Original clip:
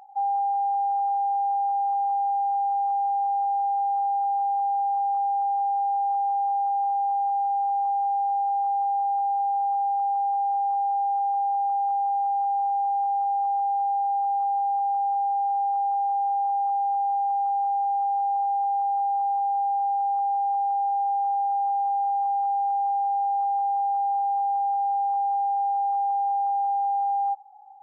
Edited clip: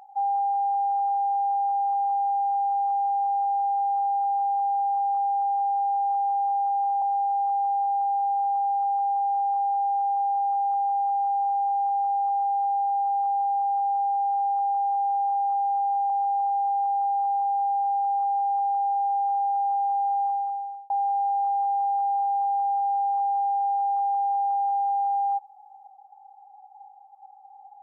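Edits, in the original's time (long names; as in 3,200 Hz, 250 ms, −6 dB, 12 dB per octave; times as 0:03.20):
0:07.02–0:08.19: remove
0:17.27–0:18.06: remove
0:22.20–0:22.86: fade out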